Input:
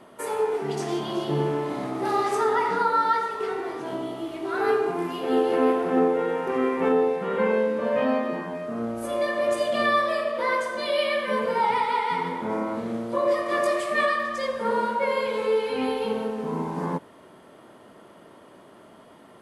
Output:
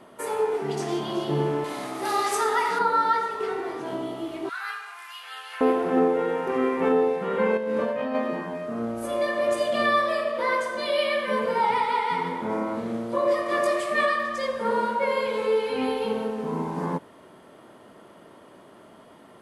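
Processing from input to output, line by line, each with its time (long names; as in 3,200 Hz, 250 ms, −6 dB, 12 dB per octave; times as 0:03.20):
0:01.64–0:02.79: spectral tilt +3 dB per octave
0:04.49–0:05.61: high-pass filter 1,300 Hz 24 dB per octave
0:07.57–0:08.15: compressor whose output falls as the input rises −27 dBFS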